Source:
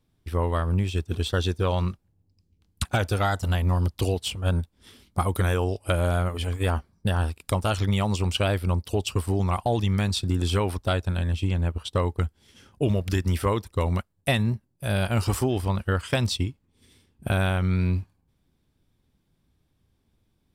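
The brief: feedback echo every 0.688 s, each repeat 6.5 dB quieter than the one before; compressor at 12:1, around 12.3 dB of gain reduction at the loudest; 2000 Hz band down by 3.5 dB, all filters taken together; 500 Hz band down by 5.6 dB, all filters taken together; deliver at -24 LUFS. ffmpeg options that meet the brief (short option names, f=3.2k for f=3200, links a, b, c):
-af "equalizer=f=500:t=o:g=-7,equalizer=f=2k:t=o:g=-4.5,acompressor=threshold=-32dB:ratio=12,aecho=1:1:688|1376|2064|2752|3440|4128:0.473|0.222|0.105|0.0491|0.0231|0.0109,volume=13.5dB"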